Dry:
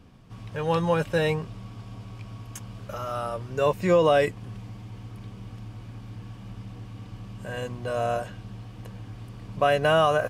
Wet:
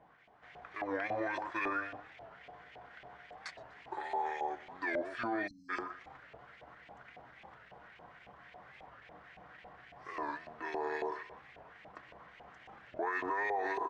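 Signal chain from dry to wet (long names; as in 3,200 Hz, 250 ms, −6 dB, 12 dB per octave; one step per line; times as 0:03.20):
pitch shifter −2.5 semitones
dynamic equaliser 250 Hz, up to −5 dB, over −41 dBFS, Q 0.8
on a send: repeating echo 88 ms, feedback 25%, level −13.5 dB
on the sum: auto-filter band-pass saw up 4.9 Hz 920–3,500 Hz
parametric band 110 Hz −13.5 dB 0.49 octaves
wrong playback speed 45 rpm record played at 33 rpm
brickwall limiter −33 dBFS, peak gain reduction 15.5 dB
time-frequency box erased 0:05.47–0:05.69, 290–4,000 Hz
wow of a warped record 45 rpm, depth 160 cents
level +6.5 dB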